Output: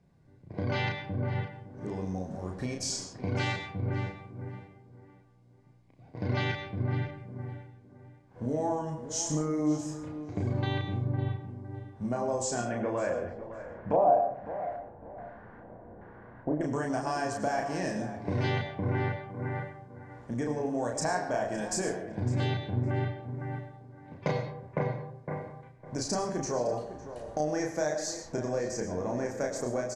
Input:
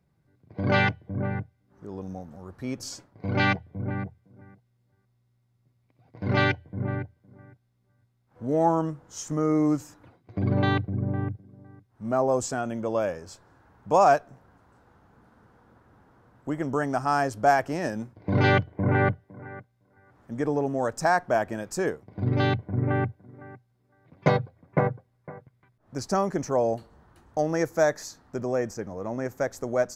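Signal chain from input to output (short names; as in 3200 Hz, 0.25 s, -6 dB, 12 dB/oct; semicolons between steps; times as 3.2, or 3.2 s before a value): LPF 8800 Hz 24 dB/oct; high shelf 5000 Hz +9 dB; notch 1300 Hz, Q 6.9; compressor 4:1, threshold -37 dBFS, peak gain reduction 18 dB; 12.68–16.61 LFO low-pass square 1.2 Hz 660–1900 Hz; doubler 33 ms -3 dB; tape echo 0.558 s, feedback 34%, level -11.5 dB, low-pass 3000 Hz; reverb RT60 0.70 s, pre-delay 60 ms, DRR 7 dB; mismatched tape noise reduction decoder only; gain +4.5 dB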